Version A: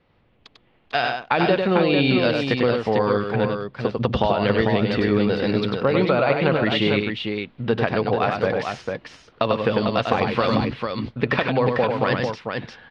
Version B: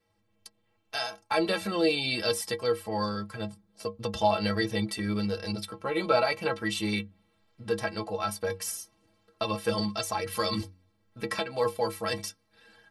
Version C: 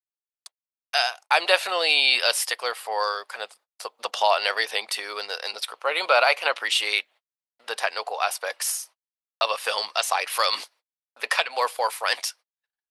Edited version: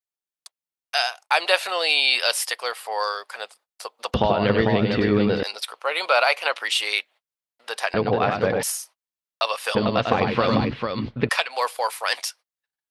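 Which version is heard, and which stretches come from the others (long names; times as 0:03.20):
C
0:04.14–0:05.43: punch in from A
0:07.94–0:08.63: punch in from A
0:09.75–0:11.29: punch in from A
not used: B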